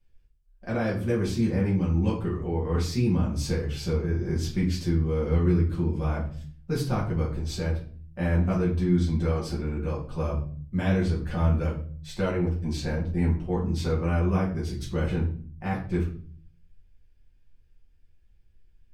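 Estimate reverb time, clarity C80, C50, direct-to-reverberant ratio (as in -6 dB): 0.45 s, 12.5 dB, 8.0 dB, -6.5 dB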